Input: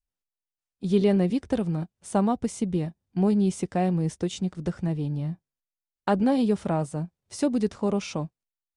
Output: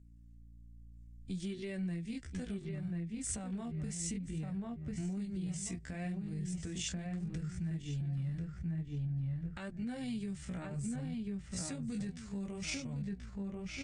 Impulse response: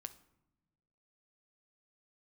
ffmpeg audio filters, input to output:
-filter_complex "[0:a]acrossover=split=140[a][b];[a]acompressor=mode=upward:threshold=-44dB:ratio=2.5[c];[c][b]amix=inputs=2:normalize=0,flanger=delay=7.8:depth=7.8:regen=-11:speed=0.97:shape=sinusoidal,asplit=2[d][e];[e]adelay=659,lowpass=f=2.2k:p=1,volume=-4dB,asplit=2[f][g];[g]adelay=659,lowpass=f=2.2k:p=1,volume=0.26,asplit=2[h][i];[i]adelay=659,lowpass=f=2.2k:p=1,volume=0.26,asplit=2[j][k];[k]adelay=659,lowpass=f=2.2k:p=1,volume=0.26[l];[f][h][j][l]amix=inputs=4:normalize=0[m];[d][m]amix=inputs=2:normalize=0,aeval=exprs='val(0)+0.00141*(sin(2*PI*60*n/s)+sin(2*PI*2*60*n/s)/2+sin(2*PI*3*60*n/s)/3+sin(2*PI*4*60*n/s)/4+sin(2*PI*5*60*n/s)/5)':c=same,acompressor=threshold=-34dB:ratio=2.5,atempo=0.66,asubboost=boost=4:cutoff=150,alimiter=level_in=7dB:limit=-24dB:level=0:latency=1:release=292,volume=-7dB,equalizer=f=500:t=o:w=1:g=-4,equalizer=f=1k:t=o:w=1:g=-9,equalizer=f=2k:t=o:w=1:g=10,equalizer=f=8k:t=o:w=1:g=11,asetrate=42336,aresample=44100"

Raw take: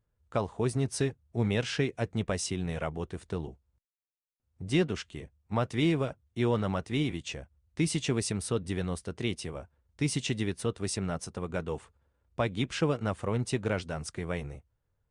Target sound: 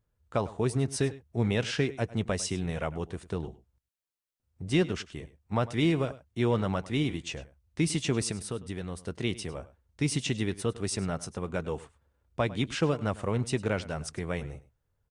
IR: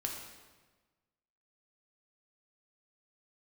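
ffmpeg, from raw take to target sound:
-filter_complex "[0:a]asettb=1/sr,asplit=3[a][b][c];[a]atrim=end=8.314[d];[b]atrim=start=8.31:end=9.04,asetpts=PTS-STARTPTS,afade=t=in:d=0.004:c=qsin,afade=t=out:st=0.726:d=0.004:c=qsin,acompressor=threshold=-37dB:ratio=2[e];[c]atrim=start=9.036[f];[d][e]acrossfade=d=0.004:c1=hsin:c2=qsin[g];[g][f]acrossfade=d=0.004:c1=qsin:c2=hsin,aecho=1:1:102:0.126,volume=1dB"

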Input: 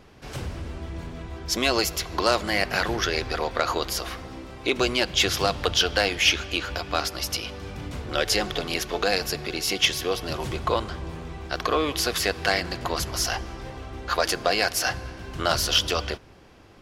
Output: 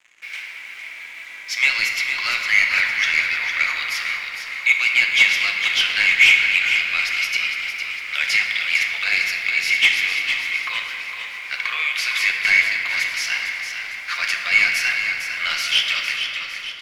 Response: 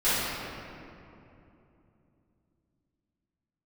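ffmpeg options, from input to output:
-filter_complex "[0:a]highpass=f=2.2k:t=q:w=9.4,acrusher=bits=6:mix=0:aa=0.5,asplit=2[a][b];[b]highpass=f=720:p=1,volume=8dB,asoftclip=type=tanh:threshold=-6dB[c];[a][c]amix=inputs=2:normalize=0,lowpass=f=3.2k:p=1,volume=-6dB,asplit=7[d][e][f][g][h][i][j];[e]adelay=456,afreqshift=-31,volume=-8dB[k];[f]adelay=912,afreqshift=-62,volume=-13.8dB[l];[g]adelay=1368,afreqshift=-93,volume=-19.7dB[m];[h]adelay=1824,afreqshift=-124,volume=-25.5dB[n];[i]adelay=2280,afreqshift=-155,volume=-31.4dB[o];[j]adelay=2736,afreqshift=-186,volume=-37.2dB[p];[d][k][l][m][n][o][p]amix=inputs=7:normalize=0,asplit=2[q][r];[1:a]atrim=start_sample=2205[s];[r][s]afir=irnorm=-1:irlink=0,volume=-16.5dB[t];[q][t]amix=inputs=2:normalize=0,volume=-3dB"

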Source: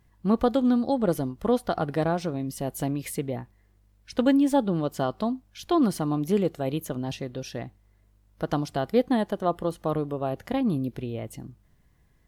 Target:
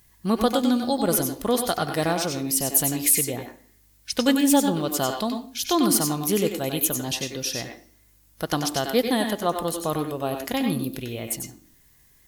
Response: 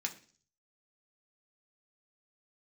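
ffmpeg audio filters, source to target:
-filter_complex "[0:a]asplit=2[a][b];[b]lowshelf=f=190:t=q:w=1.5:g=-13.5[c];[1:a]atrim=start_sample=2205,adelay=94[d];[c][d]afir=irnorm=-1:irlink=0,volume=-5.5dB[e];[a][e]amix=inputs=2:normalize=0,crystalizer=i=7:c=0,volume=-1dB"

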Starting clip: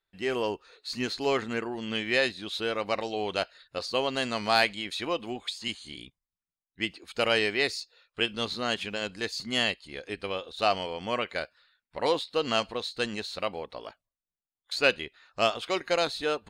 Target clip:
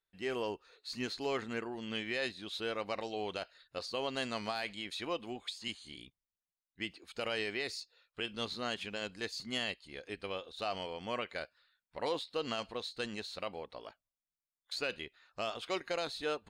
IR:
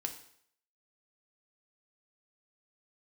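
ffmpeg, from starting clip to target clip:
-af "alimiter=limit=-17.5dB:level=0:latency=1:release=42,volume=-7dB"

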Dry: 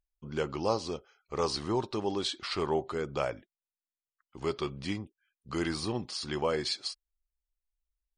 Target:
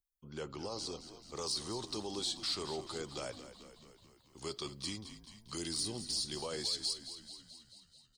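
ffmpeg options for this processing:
-filter_complex "[0:a]asettb=1/sr,asplit=3[a][b][c];[a]atrim=end=5.574[d];[b]atrim=start=5.57:end=6.37,asetpts=PTS-STARTPTS,afade=t=in:d=0.004:c=qsin,afade=t=out:st=0.796:d=0.004:c=qsin,equalizer=f=1.3k:w=1.1:g=-8.5[e];[c]atrim=start=6.366[f];[d][e]acrossfade=d=0.004:c1=hsin:c2=qsin[g];[g][f]acrossfade=d=0.004:c1=qsin:c2=hsin,acrossover=split=360|580|4000[h][i][j][k];[k]dynaudnorm=f=180:g=11:m=11dB[l];[h][i][j][l]amix=inputs=4:normalize=0,alimiter=limit=-23dB:level=0:latency=1:release=19,aexciter=amount=1.4:drive=8.6:freq=3.5k,asplit=9[m][n][o][p][q][r][s][t][u];[n]adelay=217,afreqshift=-49,volume=-12dB[v];[o]adelay=434,afreqshift=-98,volume=-15.9dB[w];[p]adelay=651,afreqshift=-147,volume=-19.8dB[x];[q]adelay=868,afreqshift=-196,volume=-23.6dB[y];[r]adelay=1085,afreqshift=-245,volume=-27.5dB[z];[s]adelay=1302,afreqshift=-294,volume=-31.4dB[aa];[t]adelay=1519,afreqshift=-343,volume=-35.3dB[ab];[u]adelay=1736,afreqshift=-392,volume=-39.1dB[ac];[m][v][w][x][y][z][aa][ab][ac]amix=inputs=9:normalize=0,volume=-9dB"

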